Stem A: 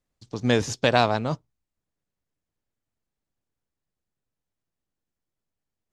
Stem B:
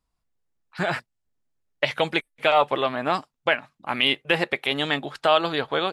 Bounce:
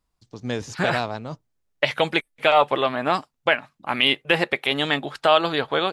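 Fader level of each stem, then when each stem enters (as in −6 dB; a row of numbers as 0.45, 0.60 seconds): −6.5, +2.0 decibels; 0.00, 0.00 seconds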